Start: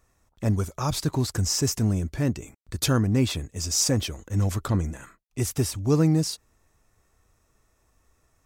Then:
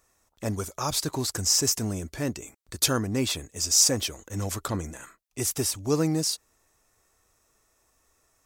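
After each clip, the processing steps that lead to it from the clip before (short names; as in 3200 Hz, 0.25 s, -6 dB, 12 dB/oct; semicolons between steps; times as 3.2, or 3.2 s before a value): tone controls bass -9 dB, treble +5 dB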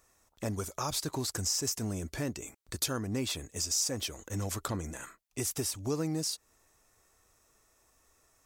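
compressor 2.5:1, threshold -33 dBFS, peak gain reduction 12 dB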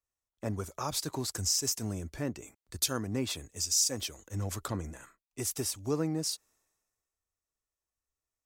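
three-band expander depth 70%; gain -1 dB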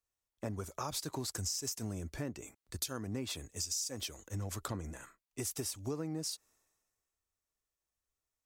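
compressor 5:1, threshold -35 dBFS, peak gain reduction 11 dB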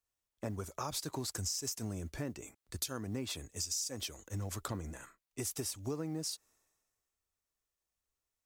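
modulation noise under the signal 34 dB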